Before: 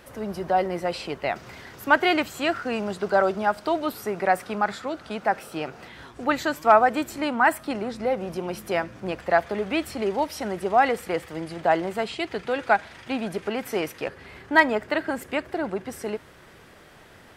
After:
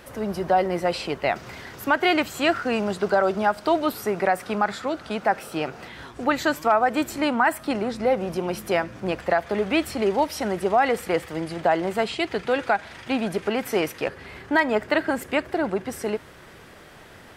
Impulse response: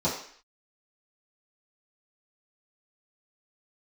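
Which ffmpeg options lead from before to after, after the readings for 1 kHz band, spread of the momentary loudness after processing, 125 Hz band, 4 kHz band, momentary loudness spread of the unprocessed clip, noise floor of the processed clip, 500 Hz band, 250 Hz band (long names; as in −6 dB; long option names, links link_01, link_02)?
0.0 dB, 8 LU, +3.0 dB, +2.5 dB, 13 LU, −47 dBFS, +2.0 dB, +3.0 dB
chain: -af "alimiter=limit=-13dB:level=0:latency=1:release=175,volume=3.5dB"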